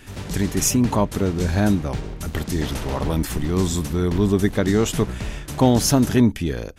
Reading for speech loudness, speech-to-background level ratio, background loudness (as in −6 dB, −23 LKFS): −21.0 LKFS, 11.0 dB, −32.0 LKFS